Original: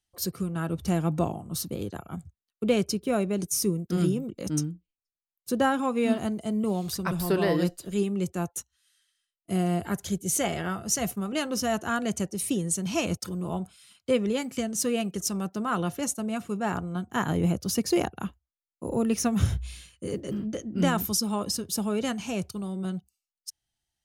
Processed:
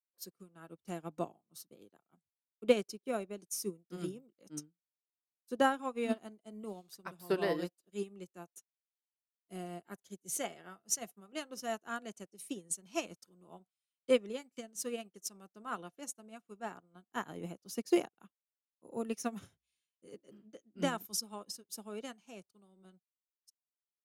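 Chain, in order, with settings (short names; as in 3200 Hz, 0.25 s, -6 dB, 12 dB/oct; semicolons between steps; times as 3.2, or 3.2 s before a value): HPF 250 Hz 12 dB/oct; upward expander 2.5:1, over -46 dBFS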